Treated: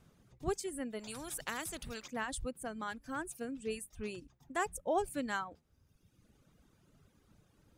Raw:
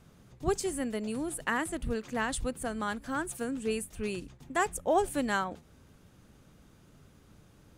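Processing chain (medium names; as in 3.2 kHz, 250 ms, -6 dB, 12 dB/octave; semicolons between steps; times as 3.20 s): reverb removal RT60 1.2 s; 0.99–2.08 s: spectrum-flattening compressor 2:1; trim -6 dB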